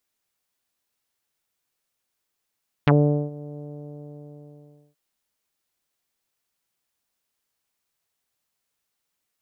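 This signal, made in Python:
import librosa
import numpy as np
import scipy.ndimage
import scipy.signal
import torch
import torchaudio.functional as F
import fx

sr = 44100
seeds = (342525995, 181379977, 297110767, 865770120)

y = fx.sub_voice(sr, note=50, wave='saw', cutoff_hz=570.0, q=1.7, env_oct=3.0, env_s=0.05, attack_ms=1.8, decay_s=0.43, sustain_db=-22.0, release_s=1.36, note_s=0.72, slope=24)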